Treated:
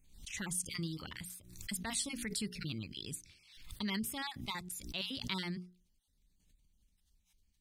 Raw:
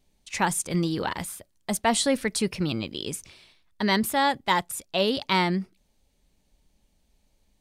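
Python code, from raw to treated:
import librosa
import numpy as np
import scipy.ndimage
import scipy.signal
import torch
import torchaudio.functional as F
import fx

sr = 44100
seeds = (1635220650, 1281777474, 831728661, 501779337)

y = fx.spec_dropout(x, sr, seeds[0], share_pct=24)
y = fx.tone_stack(y, sr, knobs='6-0-2')
y = fx.hum_notches(y, sr, base_hz=60, count=7)
y = fx.pre_swell(y, sr, db_per_s=76.0)
y = y * 10.0 ** (6.0 / 20.0)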